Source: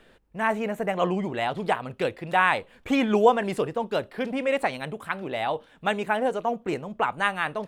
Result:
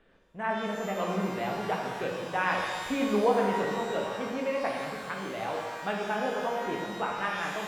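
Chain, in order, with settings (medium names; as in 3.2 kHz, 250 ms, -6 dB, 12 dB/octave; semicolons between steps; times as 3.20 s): low-pass 2.3 kHz 6 dB/octave; pitch-shifted reverb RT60 1.7 s, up +12 st, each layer -8 dB, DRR -1.5 dB; trim -8 dB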